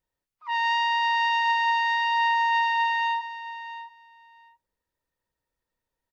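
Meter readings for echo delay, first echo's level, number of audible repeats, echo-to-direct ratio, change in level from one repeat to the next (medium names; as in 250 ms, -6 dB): 671 ms, -13.0 dB, 2, -13.0 dB, -16.5 dB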